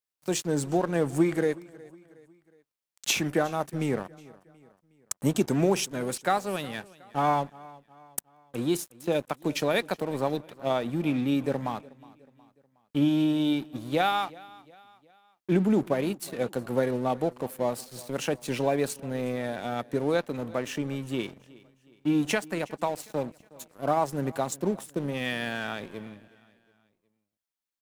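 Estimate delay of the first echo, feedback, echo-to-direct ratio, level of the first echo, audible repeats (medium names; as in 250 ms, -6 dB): 365 ms, 46%, -21.0 dB, -22.0 dB, 2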